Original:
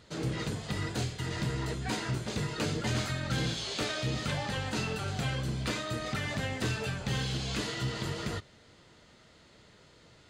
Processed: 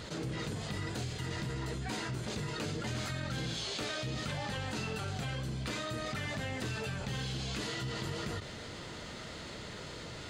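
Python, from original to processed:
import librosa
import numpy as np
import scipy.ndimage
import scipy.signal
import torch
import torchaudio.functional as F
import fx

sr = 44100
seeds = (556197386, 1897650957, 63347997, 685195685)

y = fx.dmg_crackle(x, sr, seeds[0], per_s=410.0, level_db=-59.0, at=(0.95, 1.38), fade=0.02)
y = fx.env_flatten(y, sr, amount_pct=70)
y = y * 10.0 ** (-7.5 / 20.0)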